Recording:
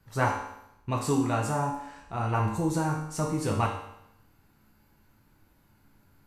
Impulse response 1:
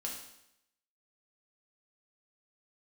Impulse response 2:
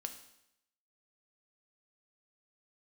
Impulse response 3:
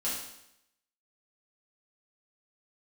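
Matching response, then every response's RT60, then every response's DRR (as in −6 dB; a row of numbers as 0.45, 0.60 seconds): 1; 0.80, 0.80, 0.80 seconds; −2.0, 6.5, −9.0 decibels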